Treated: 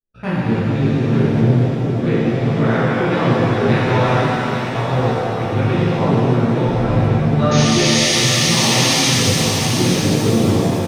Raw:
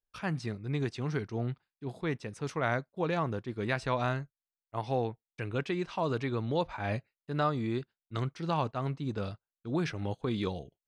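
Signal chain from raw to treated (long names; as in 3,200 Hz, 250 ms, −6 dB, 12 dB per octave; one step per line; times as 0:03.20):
adaptive Wiener filter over 41 samples
0:05.86–0:06.90: spectral tilt −2.5 dB per octave
output level in coarse steps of 20 dB
0:07.51–0:09.09: sound drawn into the spectrogram noise 1,700–6,700 Hz −41 dBFS
chorus effect 0.61 Hz, delay 16 ms, depth 2.5 ms
single-tap delay 861 ms −9.5 dB
boost into a limiter +32.5 dB
reverb with rising layers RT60 3.3 s, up +7 semitones, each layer −8 dB, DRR −10 dB
level −15 dB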